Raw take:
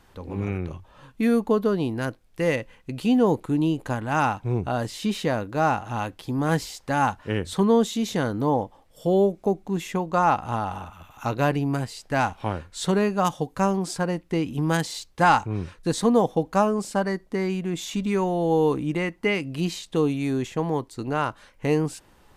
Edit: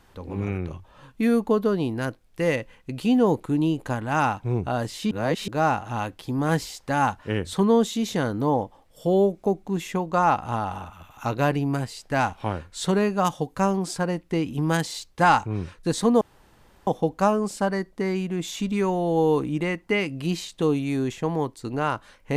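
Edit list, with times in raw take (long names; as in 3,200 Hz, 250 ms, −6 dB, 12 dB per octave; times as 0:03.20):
0:05.11–0:05.48: reverse
0:16.21: splice in room tone 0.66 s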